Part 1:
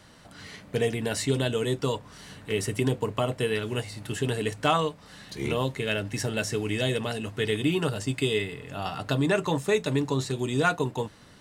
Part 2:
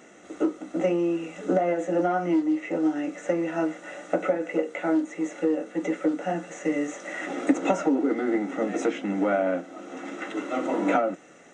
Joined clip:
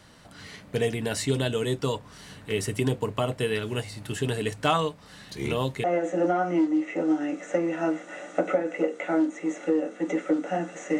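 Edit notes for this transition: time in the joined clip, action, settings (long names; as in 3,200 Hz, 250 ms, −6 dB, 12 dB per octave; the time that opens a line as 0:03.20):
part 1
0:05.84: continue with part 2 from 0:01.59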